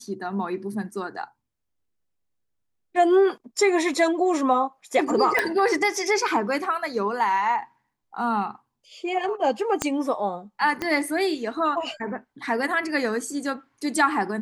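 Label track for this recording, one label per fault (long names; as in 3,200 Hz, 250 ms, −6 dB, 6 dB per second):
5.390000	5.390000	click −8 dBFS
9.820000	9.820000	click −8 dBFS
10.820000	10.820000	click −13 dBFS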